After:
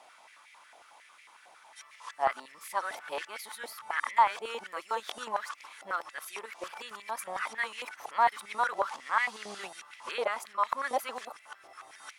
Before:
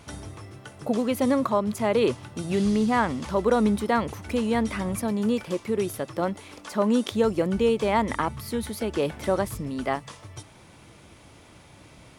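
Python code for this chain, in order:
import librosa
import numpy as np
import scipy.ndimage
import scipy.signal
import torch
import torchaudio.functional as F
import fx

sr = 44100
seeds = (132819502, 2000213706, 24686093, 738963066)

y = np.flip(x).copy()
y = fx.filter_held_highpass(y, sr, hz=11.0, low_hz=730.0, high_hz=2100.0)
y = y * librosa.db_to_amplitude(-6.5)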